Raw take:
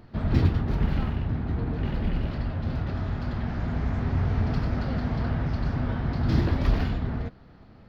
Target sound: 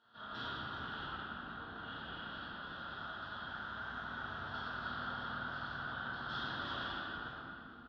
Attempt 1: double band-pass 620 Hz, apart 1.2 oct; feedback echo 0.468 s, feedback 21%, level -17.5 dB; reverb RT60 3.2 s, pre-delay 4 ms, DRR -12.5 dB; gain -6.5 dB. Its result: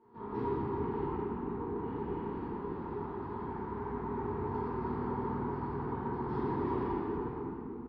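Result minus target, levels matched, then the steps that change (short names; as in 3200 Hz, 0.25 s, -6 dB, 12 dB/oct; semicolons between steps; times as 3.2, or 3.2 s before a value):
2000 Hz band -17.5 dB
change: double band-pass 2200 Hz, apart 1.2 oct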